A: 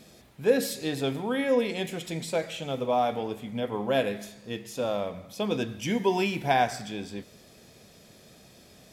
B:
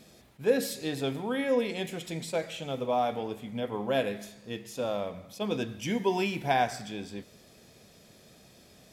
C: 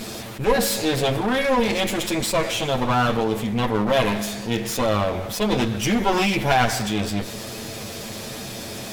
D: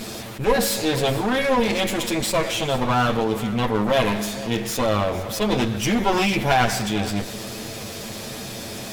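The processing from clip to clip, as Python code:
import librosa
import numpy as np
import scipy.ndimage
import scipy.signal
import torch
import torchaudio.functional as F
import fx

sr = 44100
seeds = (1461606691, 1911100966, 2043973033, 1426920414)

y1 = fx.attack_slew(x, sr, db_per_s=530.0)
y1 = y1 * 10.0 ** (-2.5 / 20.0)
y2 = fx.lower_of_two(y1, sr, delay_ms=9.0)
y2 = fx.env_flatten(y2, sr, amount_pct=50)
y2 = y2 * 10.0 ** (6.5 / 20.0)
y3 = y2 + 10.0 ** (-17.0 / 20.0) * np.pad(y2, (int(460 * sr / 1000.0), 0))[:len(y2)]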